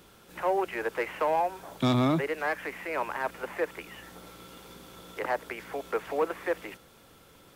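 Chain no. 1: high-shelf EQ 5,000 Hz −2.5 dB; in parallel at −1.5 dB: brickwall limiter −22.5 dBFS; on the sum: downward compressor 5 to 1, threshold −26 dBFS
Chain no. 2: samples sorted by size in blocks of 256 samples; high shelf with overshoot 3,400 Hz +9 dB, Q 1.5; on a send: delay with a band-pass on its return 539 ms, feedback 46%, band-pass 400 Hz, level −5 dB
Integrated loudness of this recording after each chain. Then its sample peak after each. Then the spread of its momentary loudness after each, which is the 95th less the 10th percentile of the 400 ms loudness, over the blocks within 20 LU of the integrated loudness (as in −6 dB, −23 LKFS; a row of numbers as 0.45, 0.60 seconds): −32.0, −28.5 LKFS; −16.0, −2.5 dBFS; 13, 20 LU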